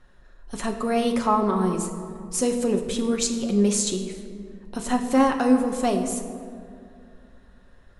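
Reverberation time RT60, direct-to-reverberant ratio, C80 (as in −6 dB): 2.4 s, 2.5 dB, 9.0 dB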